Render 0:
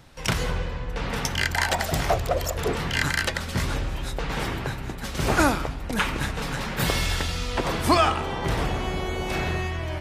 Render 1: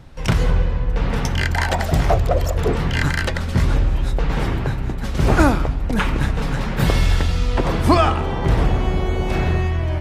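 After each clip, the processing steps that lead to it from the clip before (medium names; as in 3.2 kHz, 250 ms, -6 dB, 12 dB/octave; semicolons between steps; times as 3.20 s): tilt EQ -2 dB/octave; trim +3 dB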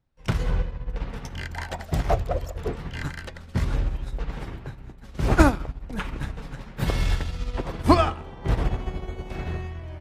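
upward expansion 2.5:1, over -31 dBFS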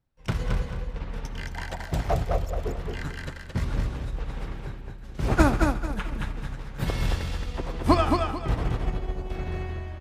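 feedback delay 221 ms, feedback 29%, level -4 dB; on a send at -18.5 dB: reverberation RT60 0.55 s, pre-delay 70 ms; on the sum: trim -3 dB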